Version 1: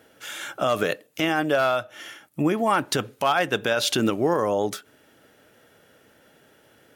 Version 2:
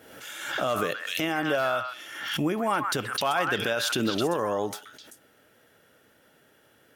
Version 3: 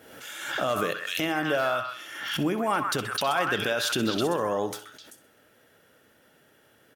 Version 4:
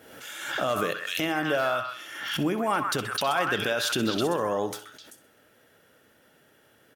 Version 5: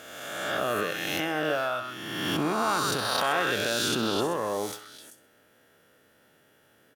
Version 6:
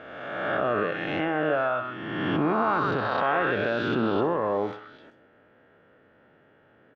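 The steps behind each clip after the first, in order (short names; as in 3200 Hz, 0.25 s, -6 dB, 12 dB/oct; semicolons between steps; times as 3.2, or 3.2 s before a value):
bell 14000 Hz +3.5 dB 0.73 oct; delay with a stepping band-pass 0.129 s, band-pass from 1400 Hz, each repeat 1.4 oct, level -2 dB; backwards sustainer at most 52 dB/s; gain -5 dB
feedback echo 64 ms, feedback 39%, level -14 dB
nothing audible
spectral swells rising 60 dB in 1.54 s; gain -4.5 dB
Bessel low-pass 1700 Hz, order 4; in parallel at -2.5 dB: limiter -22.5 dBFS, peak gain reduction 7 dB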